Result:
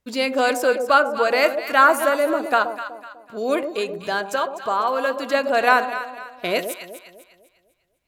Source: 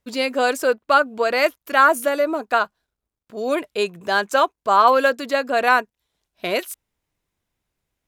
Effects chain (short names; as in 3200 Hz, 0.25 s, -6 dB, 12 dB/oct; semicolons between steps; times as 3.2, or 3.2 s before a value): 3.57–5.26 compressor 2:1, threshold -24 dBFS, peak gain reduction 8.5 dB; echo with dull and thin repeats by turns 0.125 s, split 830 Hz, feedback 61%, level -7 dB; on a send at -15 dB: reverb RT60 0.35 s, pre-delay 14 ms